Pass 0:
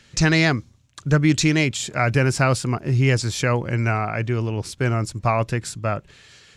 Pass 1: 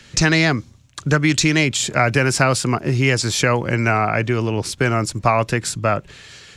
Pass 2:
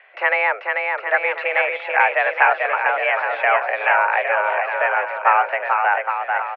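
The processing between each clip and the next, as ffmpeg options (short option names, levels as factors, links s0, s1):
-filter_complex "[0:a]acrossover=split=170|850[s0][s1][s2];[s0]acompressor=threshold=0.02:ratio=4[s3];[s1]acompressor=threshold=0.0562:ratio=4[s4];[s2]acompressor=threshold=0.0708:ratio=4[s5];[s3][s4][s5]amix=inputs=3:normalize=0,volume=2.37"
-af "highpass=f=400:t=q:w=0.5412,highpass=f=400:t=q:w=1.307,lowpass=f=2200:t=q:w=0.5176,lowpass=f=2200:t=q:w=0.7071,lowpass=f=2200:t=q:w=1.932,afreqshift=190,aecho=1:1:440|814|1132|1402|1632:0.631|0.398|0.251|0.158|0.1,volume=1.19"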